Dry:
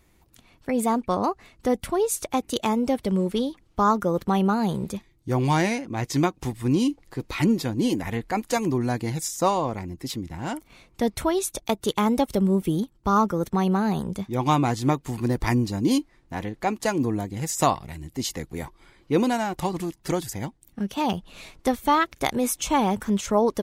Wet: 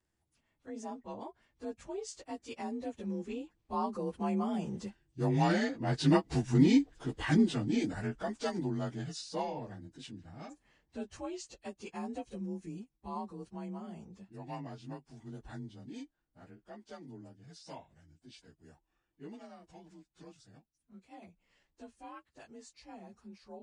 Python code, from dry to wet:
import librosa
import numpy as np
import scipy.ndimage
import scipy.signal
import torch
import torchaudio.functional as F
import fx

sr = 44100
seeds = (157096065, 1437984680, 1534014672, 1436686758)

y = fx.partial_stretch(x, sr, pct=90)
y = fx.doppler_pass(y, sr, speed_mps=6, closest_m=4.5, pass_at_s=6.6)